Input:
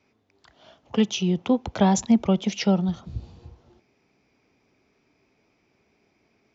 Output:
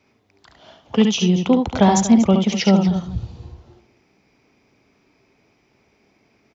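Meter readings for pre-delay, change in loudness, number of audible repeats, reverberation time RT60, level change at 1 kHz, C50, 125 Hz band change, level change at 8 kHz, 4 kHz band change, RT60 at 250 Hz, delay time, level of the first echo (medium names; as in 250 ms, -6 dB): no reverb, +6.0 dB, 2, no reverb, +7.0 dB, no reverb, +6.0 dB, no reading, +6.5 dB, no reverb, 71 ms, -5.0 dB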